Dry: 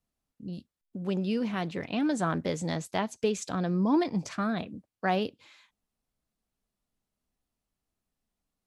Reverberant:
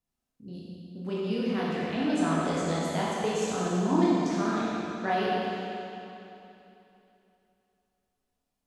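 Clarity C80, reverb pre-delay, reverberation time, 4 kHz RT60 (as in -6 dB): -2.5 dB, 18 ms, 3.0 s, 2.8 s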